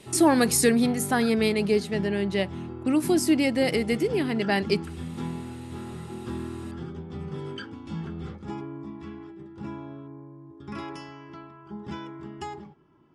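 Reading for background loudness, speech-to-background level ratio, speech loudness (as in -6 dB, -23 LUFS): -37.5 LUFS, 13.5 dB, -24.0 LUFS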